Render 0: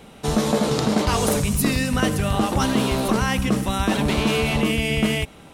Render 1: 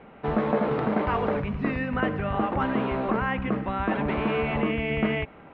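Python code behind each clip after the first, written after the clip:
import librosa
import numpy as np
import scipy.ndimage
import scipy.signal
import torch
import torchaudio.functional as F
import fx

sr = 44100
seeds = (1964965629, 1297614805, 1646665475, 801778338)

y = scipy.signal.sosfilt(scipy.signal.cheby2(4, 70, 8600.0, 'lowpass', fs=sr, output='sos'), x)
y = fx.low_shelf(y, sr, hz=230.0, db=-8.0)
y = fx.rider(y, sr, range_db=4, speed_s=2.0)
y = y * 10.0 ** (-2.0 / 20.0)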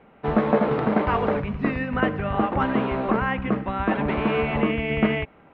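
y = fx.upward_expand(x, sr, threshold_db=-40.0, expansion=1.5)
y = y * 10.0 ** (5.5 / 20.0)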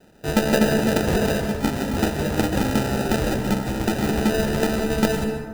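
y = fx.sample_hold(x, sr, seeds[0], rate_hz=1100.0, jitter_pct=0)
y = fx.rev_plate(y, sr, seeds[1], rt60_s=1.3, hf_ratio=0.45, predelay_ms=115, drr_db=5.5)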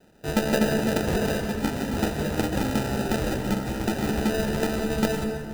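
y = x + 10.0 ** (-13.5 / 20.0) * np.pad(x, (int(963 * sr / 1000.0), 0))[:len(x)]
y = y * 10.0 ** (-4.0 / 20.0)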